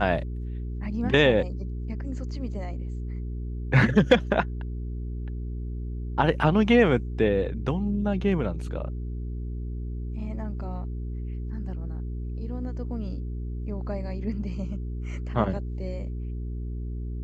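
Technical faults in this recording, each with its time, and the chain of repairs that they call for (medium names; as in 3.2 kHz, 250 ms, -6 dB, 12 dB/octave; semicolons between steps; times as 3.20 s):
hum 60 Hz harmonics 7 -32 dBFS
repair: de-hum 60 Hz, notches 7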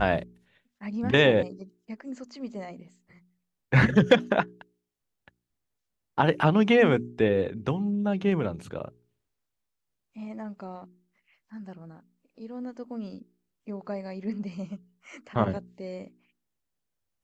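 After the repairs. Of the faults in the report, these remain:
nothing left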